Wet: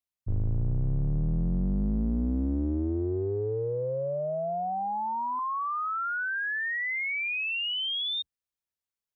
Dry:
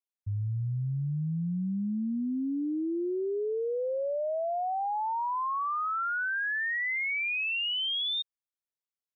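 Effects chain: octaver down 2 oct, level +3 dB; 5.39–7.83 steep high-pass 450 Hz 36 dB/oct; Doppler distortion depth 0.13 ms

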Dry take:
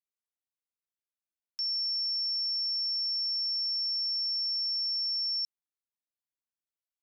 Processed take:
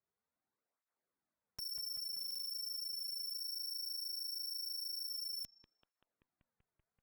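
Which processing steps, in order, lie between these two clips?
Wiener smoothing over 15 samples; one-sided clip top -50.5 dBFS, bottom -43 dBFS; bell 5200 Hz -9 dB 0.3 oct; on a send: analogue delay 0.192 s, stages 4096, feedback 80%, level -7 dB; on the sum: stuck buffer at 2.17, samples 2048, times 6; tape flanging out of phase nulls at 0.59 Hz, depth 4.1 ms; gain +13.5 dB

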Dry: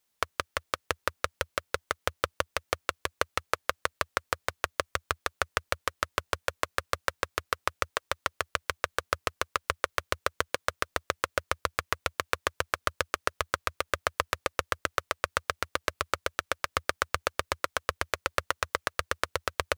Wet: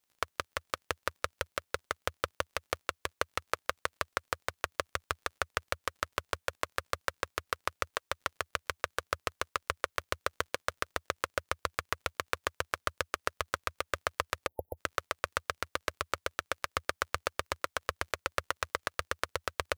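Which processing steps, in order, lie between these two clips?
crackle 42/s -48 dBFS; spectral delete 14.47–14.77, 900–11000 Hz; gain -4 dB

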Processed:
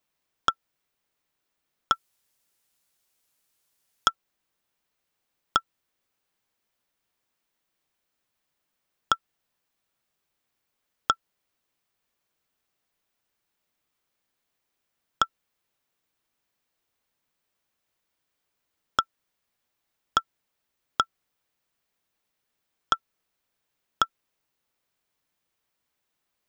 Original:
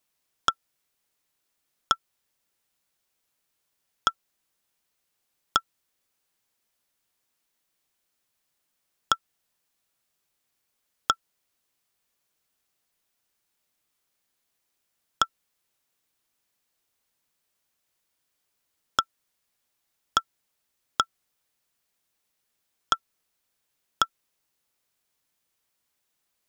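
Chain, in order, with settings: bell 11000 Hz -8 dB 2.2 oct, from 1.92 s +4 dB, from 4.08 s -7.5 dB; gain +1 dB

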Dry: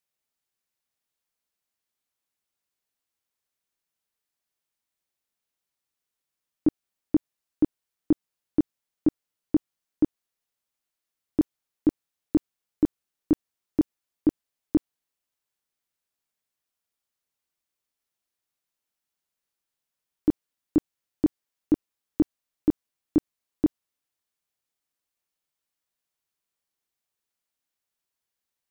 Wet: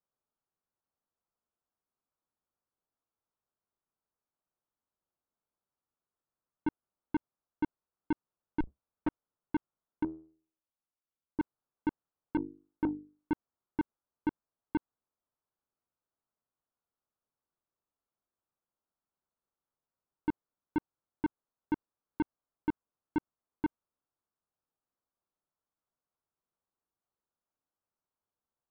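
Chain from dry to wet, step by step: 8.6–9.08 octaver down 2 oct, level -5 dB; steep low-pass 1400 Hz; 10.03–11.4 resonator 80 Hz, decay 0.45 s, harmonics all, mix 70%; 12.36–13.32 notches 50/100/150/200/250/300/350/400/450 Hz; soft clip -25 dBFS, distortion -9 dB

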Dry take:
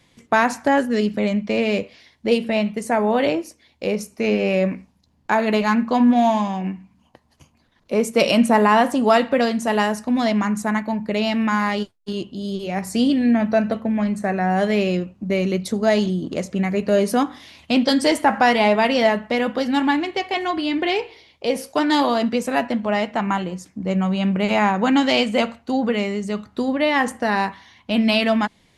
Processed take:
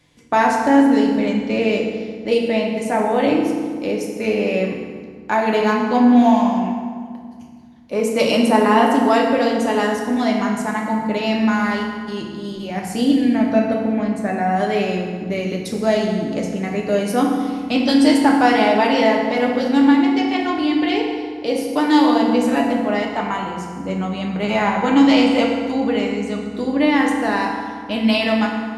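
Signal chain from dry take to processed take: FDN reverb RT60 1.9 s, low-frequency decay 1.4×, high-frequency decay 0.65×, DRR -0.5 dB; gain -2.5 dB

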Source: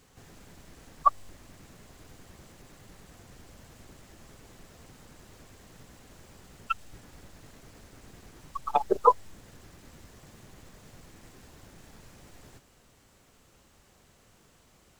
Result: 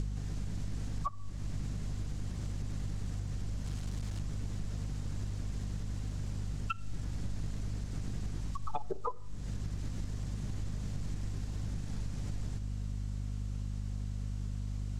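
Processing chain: 3.66–4.2 infinite clipping; air absorption 74 m; hum 50 Hz, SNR 12 dB; tone controls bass +12 dB, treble +10 dB; compressor 16:1, threshold -44 dBFS, peak gain reduction 32.5 dB; shoebox room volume 3800 m³, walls furnished, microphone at 0.43 m; gain +11.5 dB

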